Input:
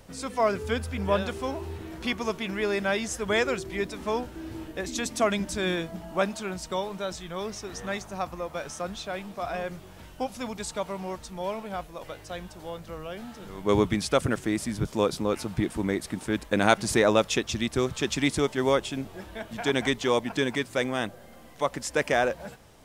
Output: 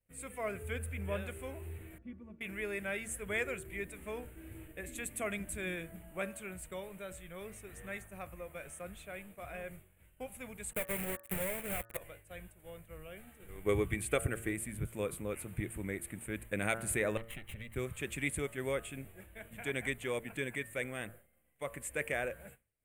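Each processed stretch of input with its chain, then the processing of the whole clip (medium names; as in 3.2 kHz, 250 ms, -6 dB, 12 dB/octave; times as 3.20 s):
1.98–2.41 s: band-pass filter 150 Hz, Q 1.4 + comb 3.5 ms, depth 91%
10.73–11.97 s: peaking EQ 6.2 kHz -11.5 dB 1.2 oct + companded quantiser 2-bit + transient shaper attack +7 dB, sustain -11 dB
13.21–14.53 s: comb 2.6 ms, depth 31% + transient shaper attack +6 dB, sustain +2 dB
17.17–17.76 s: comb filter that takes the minimum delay 1 ms + resonant high shelf 4.4 kHz -7.5 dB, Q 1.5 + compression 4:1, threshold -32 dBFS
whole clip: de-hum 113.7 Hz, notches 16; expander -38 dBFS; FFT filter 100 Hz 0 dB, 260 Hz -9 dB, 540 Hz -5 dB, 910 Hz -14 dB, 2.3 kHz +2 dB, 5.4 kHz -25 dB, 8.4 kHz +4 dB, 13 kHz +7 dB; trim -6 dB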